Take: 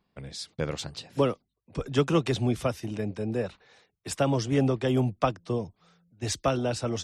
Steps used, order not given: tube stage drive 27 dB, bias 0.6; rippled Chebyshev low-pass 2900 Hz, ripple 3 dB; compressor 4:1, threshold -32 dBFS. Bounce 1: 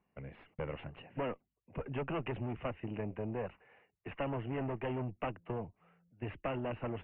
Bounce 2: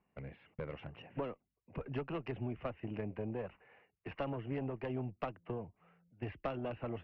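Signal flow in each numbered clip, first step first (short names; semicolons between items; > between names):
tube stage > compressor > rippled Chebyshev low-pass; compressor > rippled Chebyshev low-pass > tube stage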